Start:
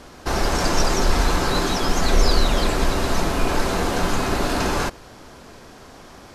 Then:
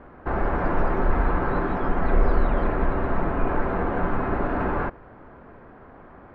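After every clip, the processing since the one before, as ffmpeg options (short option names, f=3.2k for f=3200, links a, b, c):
-af "lowpass=f=1.8k:w=0.5412,lowpass=f=1.8k:w=1.3066,volume=-2.5dB"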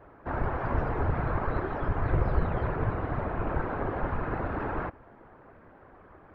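-af "equalizer=f=190:t=o:w=0.34:g=-13,afftfilt=real='hypot(re,im)*cos(2*PI*random(0))':imag='hypot(re,im)*sin(2*PI*random(1))':win_size=512:overlap=0.75"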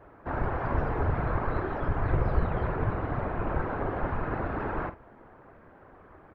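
-filter_complex "[0:a]asplit=2[a][b];[b]adelay=47,volume=-11.5dB[c];[a][c]amix=inputs=2:normalize=0"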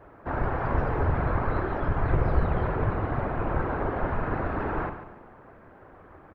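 -af "aecho=1:1:142|284|426|568:0.282|0.113|0.0451|0.018,volume=2dB"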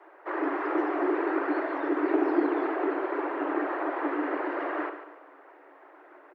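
-af "afreqshift=280,volume=-2.5dB"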